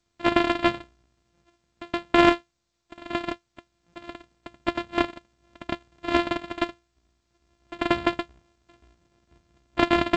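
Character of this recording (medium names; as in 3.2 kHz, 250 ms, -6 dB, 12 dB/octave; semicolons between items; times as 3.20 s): a buzz of ramps at a fixed pitch in blocks of 128 samples; G.722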